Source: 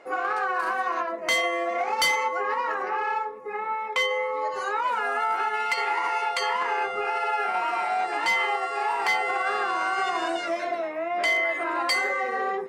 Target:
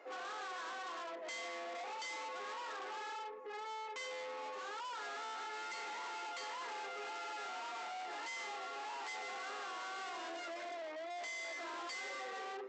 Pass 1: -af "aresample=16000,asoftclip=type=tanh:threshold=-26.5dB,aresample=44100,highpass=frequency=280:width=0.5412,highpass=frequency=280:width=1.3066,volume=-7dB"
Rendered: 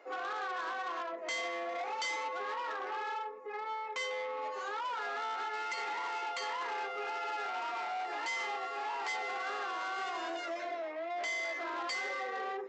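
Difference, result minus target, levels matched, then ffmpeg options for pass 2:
soft clipping: distortion −6 dB
-af "aresample=16000,asoftclip=type=tanh:threshold=-36dB,aresample=44100,highpass=frequency=280:width=0.5412,highpass=frequency=280:width=1.3066,volume=-7dB"

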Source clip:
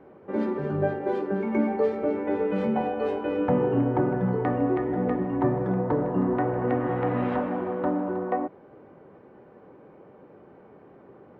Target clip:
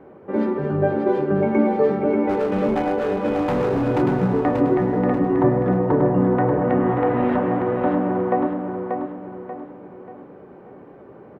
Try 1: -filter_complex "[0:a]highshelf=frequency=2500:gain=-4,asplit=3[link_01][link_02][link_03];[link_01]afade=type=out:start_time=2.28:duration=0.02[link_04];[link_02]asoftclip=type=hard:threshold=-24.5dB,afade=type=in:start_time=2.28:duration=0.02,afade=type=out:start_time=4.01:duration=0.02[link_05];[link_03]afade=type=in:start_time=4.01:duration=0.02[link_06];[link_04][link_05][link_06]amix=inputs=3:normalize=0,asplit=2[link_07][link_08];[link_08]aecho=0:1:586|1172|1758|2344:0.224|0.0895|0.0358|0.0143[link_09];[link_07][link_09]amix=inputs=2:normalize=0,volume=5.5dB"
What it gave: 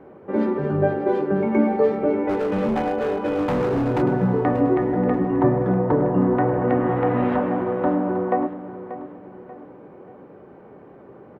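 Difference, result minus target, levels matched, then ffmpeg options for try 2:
echo-to-direct −8 dB
-filter_complex "[0:a]highshelf=frequency=2500:gain=-4,asplit=3[link_01][link_02][link_03];[link_01]afade=type=out:start_time=2.28:duration=0.02[link_04];[link_02]asoftclip=type=hard:threshold=-24.5dB,afade=type=in:start_time=2.28:duration=0.02,afade=type=out:start_time=4.01:duration=0.02[link_05];[link_03]afade=type=in:start_time=4.01:duration=0.02[link_06];[link_04][link_05][link_06]amix=inputs=3:normalize=0,asplit=2[link_07][link_08];[link_08]aecho=0:1:586|1172|1758|2344|2930:0.562|0.225|0.09|0.036|0.0144[link_09];[link_07][link_09]amix=inputs=2:normalize=0,volume=5.5dB"

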